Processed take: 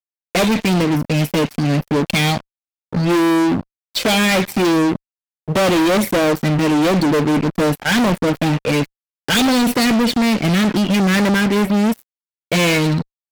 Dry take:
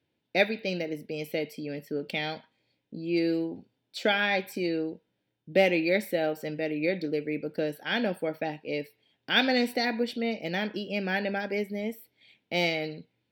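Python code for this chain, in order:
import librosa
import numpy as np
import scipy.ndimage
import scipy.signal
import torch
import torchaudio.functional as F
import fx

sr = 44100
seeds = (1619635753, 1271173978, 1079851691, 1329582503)

y = fx.low_shelf(x, sr, hz=290.0, db=9.5)
y = fx.env_flanger(y, sr, rest_ms=2.7, full_db=-19.0)
y = fx.fuzz(y, sr, gain_db=39.0, gate_db=-46.0)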